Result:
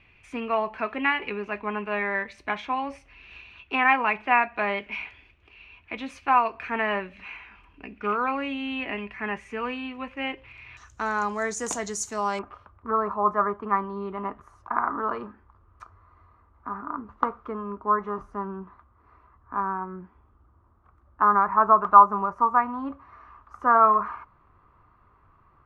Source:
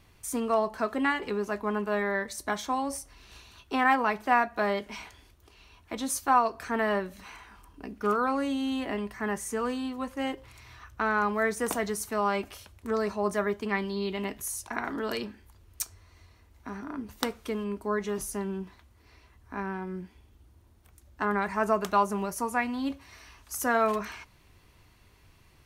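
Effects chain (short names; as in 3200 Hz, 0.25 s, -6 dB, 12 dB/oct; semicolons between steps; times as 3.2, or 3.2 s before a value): synth low-pass 2500 Hz, resonance Q 6.6, from 10.77 s 6900 Hz, from 12.39 s 1200 Hz; dynamic EQ 930 Hz, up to +5 dB, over -36 dBFS, Q 2.2; gain -2.5 dB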